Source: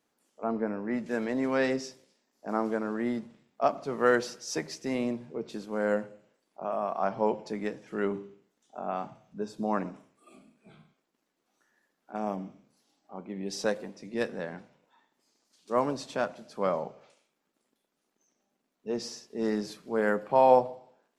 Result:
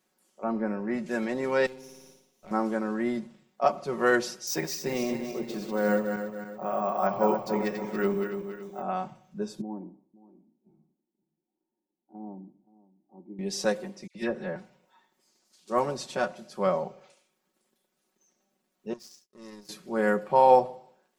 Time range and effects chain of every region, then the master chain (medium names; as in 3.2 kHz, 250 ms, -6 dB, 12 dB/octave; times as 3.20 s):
1.66–2.51 s: comb filter that takes the minimum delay 0.31 ms + flutter echo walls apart 9.8 m, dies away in 0.68 s + compression 3:1, threshold -48 dBFS
4.47–8.82 s: backward echo that repeats 141 ms, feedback 65%, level -6 dB + careless resampling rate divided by 2×, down filtered, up hold
9.61–13.39 s: cascade formant filter u + delay 524 ms -20 dB
14.07–14.56 s: treble shelf 4.2 kHz -11.5 dB + phase dispersion lows, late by 80 ms, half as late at 2 kHz
18.93–19.69 s: treble shelf 4.2 kHz +9 dB + power-law waveshaper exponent 2 + compression 2:1, threshold -54 dBFS
whole clip: treble shelf 5.8 kHz +5 dB; comb 5.4 ms, depth 68%